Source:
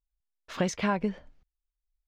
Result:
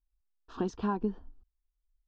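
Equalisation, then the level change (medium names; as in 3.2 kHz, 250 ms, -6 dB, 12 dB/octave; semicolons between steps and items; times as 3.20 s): distance through air 160 m; bass shelf 460 Hz +10.5 dB; static phaser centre 570 Hz, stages 6; -4.5 dB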